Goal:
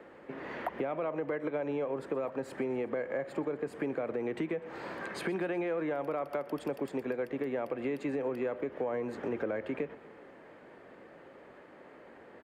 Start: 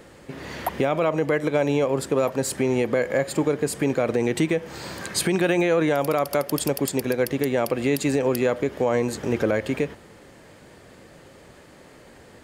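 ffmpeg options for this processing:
-filter_complex "[0:a]acontrast=52,acrossover=split=220 2500:gain=0.158 1 0.0708[a][b][c];[a][b][c]amix=inputs=3:normalize=0,acrossover=split=130[d][e];[e]acompressor=threshold=-23dB:ratio=4[f];[d][f]amix=inputs=2:normalize=0,aecho=1:1:124|248|372|496|620:0.1|0.058|0.0336|0.0195|0.0113,volume=-9dB"

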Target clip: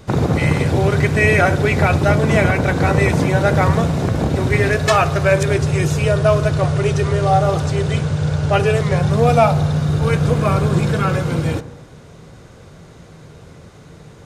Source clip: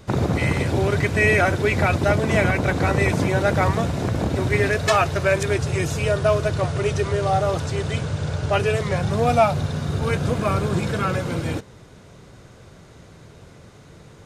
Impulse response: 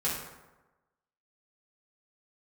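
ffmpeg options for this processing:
-filter_complex "[0:a]asplit=2[a][b];[b]lowpass=1.6k[c];[1:a]atrim=start_sample=2205[d];[c][d]afir=irnorm=-1:irlink=0,volume=-16dB[e];[a][e]amix=inputs=2:normalize=0,volume=3dB"

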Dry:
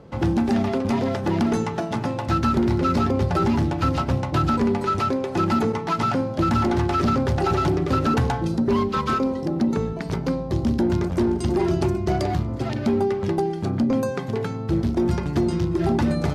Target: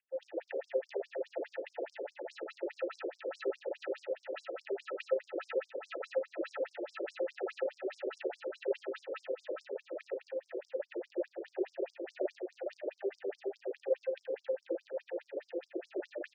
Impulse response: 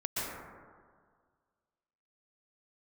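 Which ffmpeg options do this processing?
-filter_complex "[0:a]aemphasis=mode=production:type=50kf,adynamicsmooth=sensitivity=5:basefreq=660,aeval=exprs='0.251*(cos(1*acos(clip(val(0)/0.251,-1,1)))-cos(1*PI/2))+0.0708*(cos(2*acos(clip(val(0)/0.251,-1,1)))-cos(2*PI/2))':c=same,asplit=3[a][b][c];[a]bandpass=f=530:t=q:w=8,volume=0dB[d];[b]bandpass=f=1.84k:t=q:w=8,volume=-6dB[e];[c]bandpass=f=2.48k:t=q:w=8,volume=-9dB[f];[d][e][f]amix=inputs=3:normalize=0,asplit=2[g][h];[h]adelay=35,volume=-5dB[i];[g][i]amix=inputs=2:normalize=0,aecho=1:1:453|906|1359|1812|2265|2718:0.596|0.292|0.143|0.0701|0.0343|0.0168,asplit=2[j][k];[1:a]atrim=start_sample=2205,asetrate=42336,aresample=44100[l];[k][l]afir=irnorm=-1:irlink=0,volume=-20dB[m];[j][m]amix=inputs=2:normalize=0,afftfilt=real='re*between(b*sr/1024,390*pow(7100/390,0.5+0.5*sin(2*PI*4.8*pts/sr))/1.41,390*pow(7100/390,0.5+0.5*sin(2*PI*4.8*pts/sr))*1.41)':imag='im*between(b*sr/1024,390*pow(7100/390,0.5+0.5*sin(2*PI*4.8*pts/sr))/1.41,390*pow(7100/390,0.5+0.5*sin(2*PI*4.8*pts/sr))*1.41)':win_size=1024:overlap=0.75,volume=1.5dB"

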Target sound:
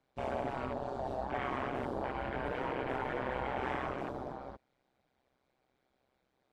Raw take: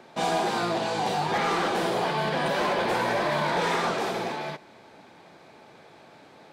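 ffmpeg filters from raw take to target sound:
-af "afwtdn=0.0282,afreqshift=-92,tremolo=f=130:d=0.919,volume=-6.5dB"

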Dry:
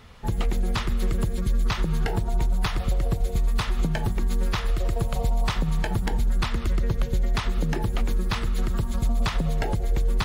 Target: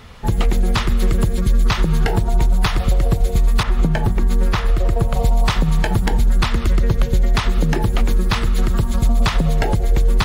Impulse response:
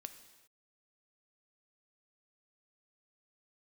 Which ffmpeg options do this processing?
-filter_complex "[0:a]asettb=1/sr,asplit=3[a][b][c];[a]atrim=end=3.634[d];[b]atrim=start=3.63:end=5.17,asetpts=PTS-STARTPTS,afade=t=in:d=0.004:c=qsin,afade=t=out:st=1.536:d=0.004:c=qsin,adynamicequalizer=threshold=0.00447:dfrequency=2300:dqfactor=0.7:tfrequency=2300:tqfactor=0.7:attack=5:release=100:ratio=0.375:range=3.5:mode=cutabove:tftype=highshelf[e];[c]atrim=start=5.166[f];[d][e]acrossfade=d=0.004:c1=hsin:c2=qsin[g];[g][f]acrossfade=d=0.004:c1=qsin:c2=hsin,volume=8dB"

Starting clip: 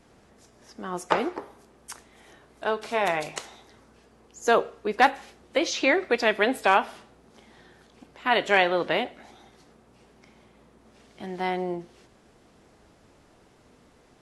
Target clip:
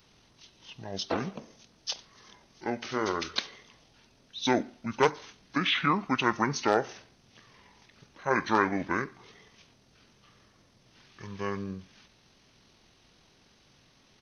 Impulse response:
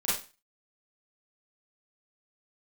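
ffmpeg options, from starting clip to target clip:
-af "asetrate=24046,aresample=44100,atempo=1.83401,crystalizer=i=9:c=0,volume=-7dB"

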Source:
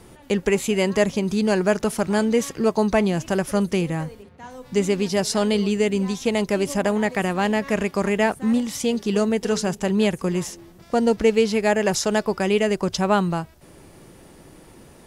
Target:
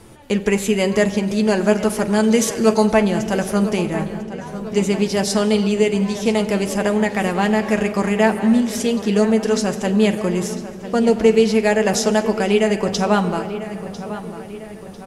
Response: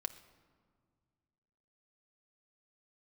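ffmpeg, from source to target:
-filter_complex "[0:a]asettb=1/sr,asplit=3[a][b][c];[a]atrim=end=2.234[d];[b]atrim=start=2.23:end=2.86,asetpts=PTS-STARTPTS,afade=t=in:d=0.004:c=qsin,afade=t=out:st=0.626:d=0.004:c=qsin,equalizer=f=7.3k:w=0.35:g=7.5[e];[c]atrim=start=2.856[f];[d][e]acrossfade=d=0.004:c1=hsin:c2=qsin[g];[g][f]acrossfade=d=0.004:c1=qsin:c2=hsin,asplit=2[h][i];[i]adelay=998,lowpass=f=3.8k:p=1,volume=-13dB,asplit=2[j][k];[k]adelay=998,lowpass=f=3.8k:p=1,volume=0.53,asplit=2[l][m];[m]adelay=998,lowpass=f=3.8k:p=1,volume=0.53,asplit=2[n][o];[o]adelay=998,lowpass=f=3.8k:p=1,volume=0.53,asplit=2[p][q];[q]adelay=998,lowpass=f=3.8k:p=1,volume=0.53[r];[h][j][l][n][p][r]amix=inputs=6:normalize=0[s];[1:a]atrim=start_sample=2205,asetrate=26019,aresample=44100[t];[s][t]afir=irnorm=-1:irlink=0,volume=1dB"

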